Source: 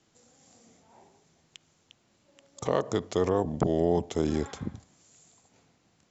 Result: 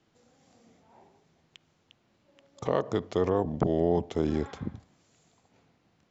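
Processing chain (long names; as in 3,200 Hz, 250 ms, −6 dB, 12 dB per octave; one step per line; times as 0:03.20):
high-frequency loss of the air 140 metres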